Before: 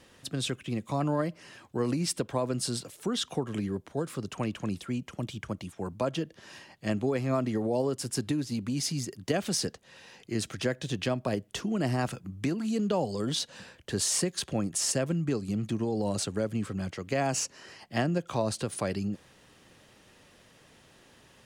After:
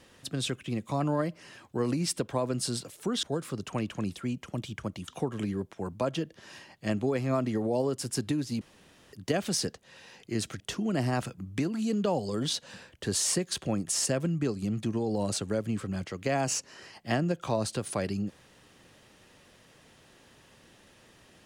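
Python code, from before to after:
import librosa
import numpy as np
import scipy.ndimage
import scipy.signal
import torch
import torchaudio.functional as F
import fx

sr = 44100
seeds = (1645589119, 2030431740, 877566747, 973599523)

y = fx.edit(x, sr, fx.move(start_s=3.23, length_s=0.65, to_s=5.73),
    fx.room_tone_fill(start_s=8.61, length_s=0.52),
    fx.cut(start_s=10.6, length_s=0.86), tone=tone)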